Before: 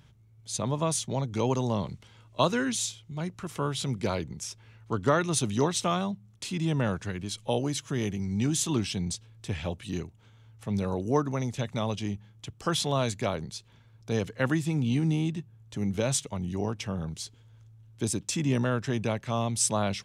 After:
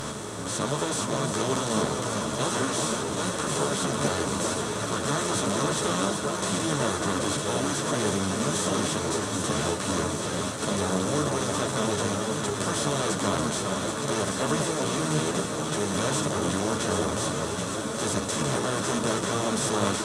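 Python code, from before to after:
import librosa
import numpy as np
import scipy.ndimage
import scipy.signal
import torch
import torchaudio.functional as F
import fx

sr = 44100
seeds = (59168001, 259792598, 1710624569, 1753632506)

y = fx.bin_compress(x, sr, power=0.2)
y = fx.echo_alternate(y, sr, ms=390, hz=1400.0, feedback_pct=82, wet_db=-4)
y = fx.ensemble(y, sr)
y = F.gain(torch.from_numpy(y), -6.5).numpy()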